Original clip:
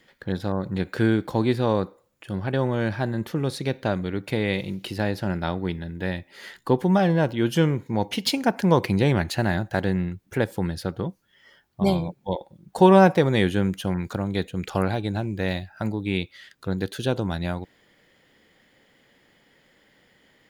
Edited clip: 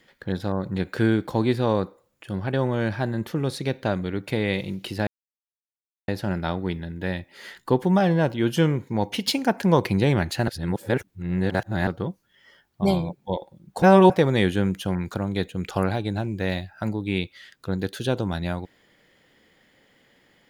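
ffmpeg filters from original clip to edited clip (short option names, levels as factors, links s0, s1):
-filter_complex "[0:a]asplit=6[s0][s1][s2][s3][s4][s5];[s0]atrim=end=5.07,asetpts=PTS-STARTPTS,afade=t=out:st=5.066:d=0.004:c=hsin,apad=pad_dur=1.01[s6];[s1]atrim=start=5.07:end=9.472,asetpts=PTS-STARTPTS,afade=t=in:d=0.004:c=hsin[s7];[s2]atrim=start=9.468:end=10.862,asetpts=PTS-STARTPTS,areverse[s8];[s3]atrim=start=10.858:end=12.812[s9];[s4]atrim=start=12.808:end=13.092,asetpts=PTS-STARTPTS,areverse[s10];[s5]atrim=start=13.088[s11];[s6][s7]concat=n=2:v=0:a=1[s12];[s12][s8]acrossfade=d=0.004:c1=hsin:c2=hsin[s13];[s13][s9]acrossfade=d=0.004:c1=hsin:c2=hsin[s14];[s14][s10]acrossfade=d=0.004:c1=hsin:c2=hsin[s15];[s15][s11]acrossfade=d=0.004:c1=hsin:c2=hsin"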